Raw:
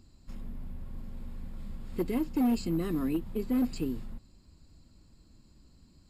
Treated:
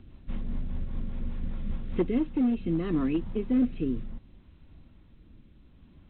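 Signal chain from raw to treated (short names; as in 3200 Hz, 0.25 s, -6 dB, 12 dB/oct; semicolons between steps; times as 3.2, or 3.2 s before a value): vocal rider within 5 dB 0.5 s; rotary speaker horn 5 Hz, later 0.65 Hz, at 1.74; gain +4.5 dB; A-law 64 kbps 8000 Hz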